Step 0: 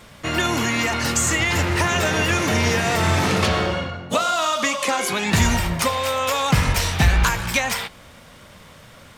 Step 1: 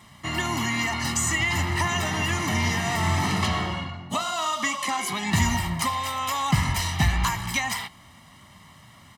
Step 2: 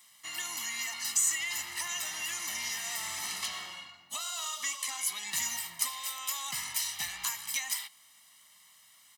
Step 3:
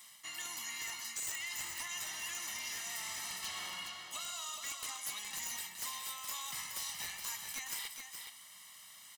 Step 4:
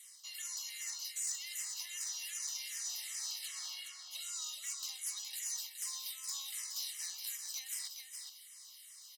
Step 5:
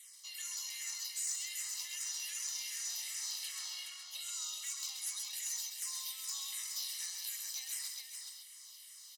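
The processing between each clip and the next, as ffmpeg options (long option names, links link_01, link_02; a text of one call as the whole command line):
ffmpeg -i in.wav -af "highpass=73,aecho=1:1:1:0.8,volume=-7dB" out.wav
ffmpeg -i in.wav -af "aderivative" out.wav
ffmpeg -i in.wav -af "areverse,acompressor=threshold=-45dB:ratio=4,areverse,aeval=exprs='(mod(56.2*val(0)+1,2)-1)/56.2':channel_layout=same,aecho=1:1:127|419:0.211|0.473,volume=3.5dB" out.wav
ffmpeg -i in.wav -filter_complex "[0:a]aexciter=amount=2.4:drive=4.8:freq=4300,bandpass=frequency=4700:width_type=q:width=0.8:csg=0,asplit=2[link_01][link_02];[link_02]afreqshift=-2.6[link_03];[link_01][link_03]amix=inputs=2:normalize=1" out.wav
ffmpeg -i in.wav -af "aecho=1:1:132:0.531" out.wav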